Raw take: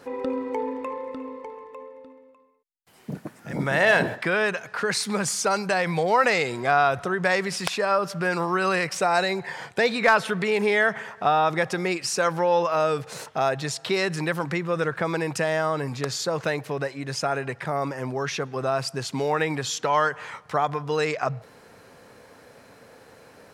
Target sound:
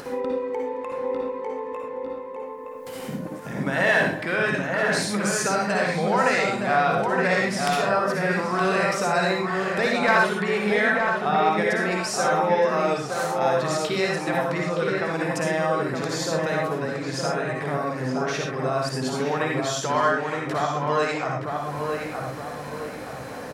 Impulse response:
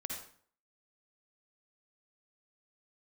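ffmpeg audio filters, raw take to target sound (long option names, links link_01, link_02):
-filter_complex "[0:a]acompressor=mode=upward:threshold=-25dB:ratio=2.5,asplit=2[link_01][link_02];[link_02]adelay=918,lowpass=frequency=1900:poles=1,volume=-3dB,asplit=2[link_03][link_04];[link_04]adelay=918,lowpass=frequency=1900:poles=1,volume=0.48,asplit=2[link_05][link_06];[link_06]adelay=918,lowpass=frequency=1900:poles=1,volume=0.48,asplit=2[link_07][link_08];[link_08]adelay=918,lowpass=frequency=1900:poles=1,volume=0.48,asplit=2[link_09][link_10];[link_10]adelay=918,lowpass=frequency=1900:poles=1,volume=0.48,asplit=2[link_11][link_12];[link_12]adelay=918,lowpass=frequency=1900:poles=1,volume=0.48[link_13];[link_01][link_03][link_05][link_07][link_09][link_11][link_13]amix=inputs=7:normalize=0[link_14];[1:a]atrim=start_sample=2205,atrim=end_sample=6174[link_15];[link_14][link_15]afir=irnorm=-1:irlink=0"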